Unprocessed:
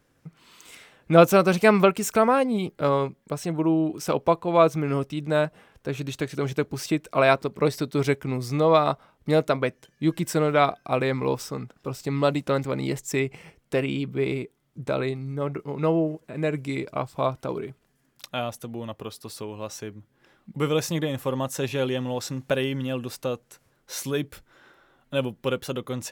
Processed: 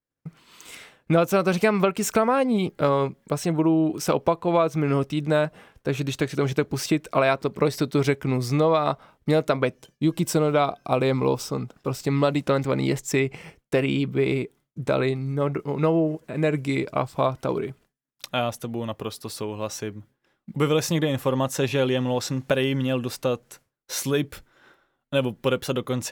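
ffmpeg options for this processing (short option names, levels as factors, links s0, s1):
-filter_complex "[0:a]asettb=1/sr,asplit=3[s0][s1][s2];[s0]atrim=end=9.654[s3];[s1]atrim=start=9.65:end=11.74,asetpts=PTS-STARTPTS,afade=t=in:d=0.004:c=qsin,afade=t=out:st=2.086:d=0.004:c=qsin,equalizer=f=1800:w=2.4:g=-8.5[s4];[s2]atrim=start=11.736[s5];[s3][s4]acrossfade=d=0.004:c1=hsin:c2=qsin[s6];[s6][s5]acrossfade=d=0.004:c1=qsin:c2=hsin,agate=range=0.0224:threshold=0.00355:ratio=3:detection=peak,acompressor=threshold=0.0891:ratio=6,adynamicequalizer=threshold=0.00398:dfrequency=6700:dqfactor=0.7:tfrequency=6700:tqfactor=0.7:attack=5:release=100:ratio=0.375:range=2:mode=cutabove:tftype=highshelf,volume=1.68"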